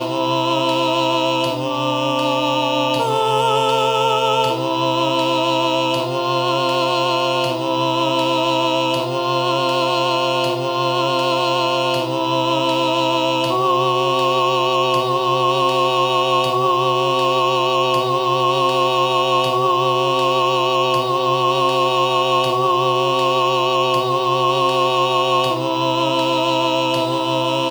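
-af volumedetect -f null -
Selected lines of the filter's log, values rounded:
mean_volume: -17.4 dB
max_volume: -5.0 dB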